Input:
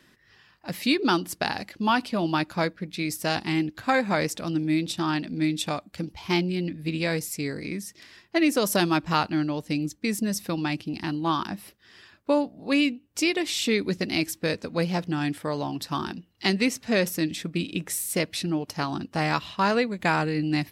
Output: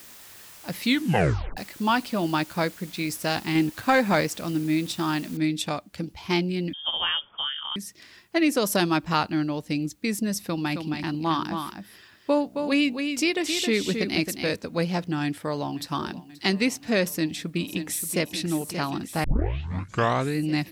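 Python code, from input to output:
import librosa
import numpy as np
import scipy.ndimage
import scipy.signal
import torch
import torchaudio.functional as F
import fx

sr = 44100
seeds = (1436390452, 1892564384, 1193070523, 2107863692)

y = fx.leveller(x, sr, passes=1, at=(3.55, 4.21))
y = fx.noise_floor_step(y, sr, seeds[0], at_s=5.37, before_db=-47, after_db=-70, tilt_db=0.0)
y = fx.freq_invert(y, sr, carrier_hz=3400, at=(6.73, 7.76))
y = fx.echo_single(y, sr, ms=268, db=-6.5, at=(10.39, 14.56))
y = fx.echo_throw(y, sr, start_s=15.23, length_s=0.65, ms=530, feedback_pct=75, wet_db=-18.0)
y = fx.echo_throw(y, sr, start_s=17.09, length_s=1.13, ms=580, feedback_pct=70, wet_db=-9.5)
y = fx.edit(y, sr, fx.tape_stop(start_s=0.85, length_s=0.72),
    fx.tape_start(start_s=19.24, length_s=1.14), tone=tone)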